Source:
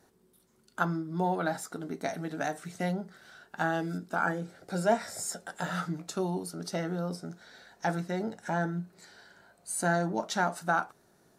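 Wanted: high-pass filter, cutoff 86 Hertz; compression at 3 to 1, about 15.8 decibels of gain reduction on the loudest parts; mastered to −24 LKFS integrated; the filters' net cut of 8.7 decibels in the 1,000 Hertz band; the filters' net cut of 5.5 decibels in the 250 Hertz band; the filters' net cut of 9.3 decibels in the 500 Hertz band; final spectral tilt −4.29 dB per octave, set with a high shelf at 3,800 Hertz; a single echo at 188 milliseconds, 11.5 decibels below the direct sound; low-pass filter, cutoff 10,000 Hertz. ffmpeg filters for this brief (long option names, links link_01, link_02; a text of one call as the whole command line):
ffmpeg -i in.wav -af "highpass=86,lowpass=10000,equalizer=frequency=250:width_type=o:gain=-6.5,equalizer=frequency=500:width_type=o:gain=-8,equalizer=frequency=1000:width_type=o:gain=-8.5,highshelf=frequency=3800:gain=-5,acompressor=threshold=-51dB:ratio=3,aecho=1:1:188:0.266,volume=27dB" out.wav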